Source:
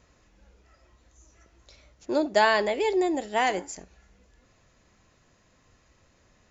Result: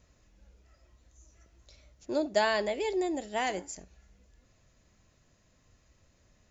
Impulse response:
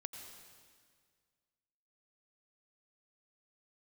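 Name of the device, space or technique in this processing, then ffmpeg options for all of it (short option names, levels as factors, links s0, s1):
smiley-face EQ: -af "lowshelf=f=190:g=5.5,equalizer=f=620:t=o:w=0.34:g=4.5,equalizer=f=830:t=o:w=2.4:g=-3.5,highshelf=f=5800:g=5,volume=0.531"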